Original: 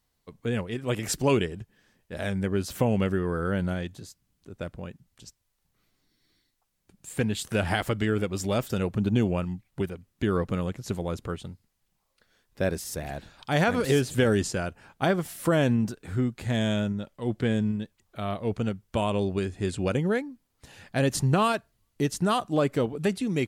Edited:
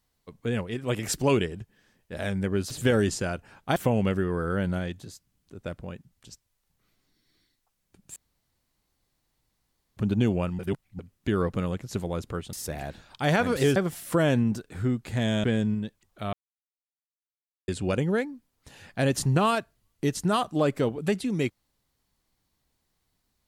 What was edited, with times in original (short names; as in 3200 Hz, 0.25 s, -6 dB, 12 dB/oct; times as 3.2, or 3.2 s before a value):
7.11–8.92 room tone
9.54–9.94 reverse
11.48–12.81 cut
14.04–15.09 move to 2.71
16.77–17.41 cut
18.3–19.65 mute